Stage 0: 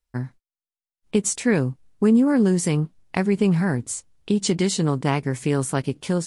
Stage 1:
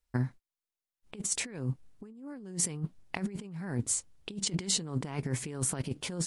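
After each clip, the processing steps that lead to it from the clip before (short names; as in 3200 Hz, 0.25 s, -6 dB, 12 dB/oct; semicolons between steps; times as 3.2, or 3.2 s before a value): negative-ratio compressor -26 dBFS, ratio -0.5; gain -7 dB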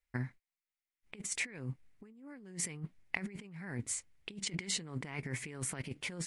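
bell 2100 Hz +13 dB 0.73 oct; gain -7.5 dB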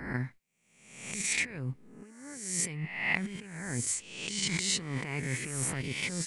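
spectral swells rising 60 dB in 0.83 s; gain +3 dB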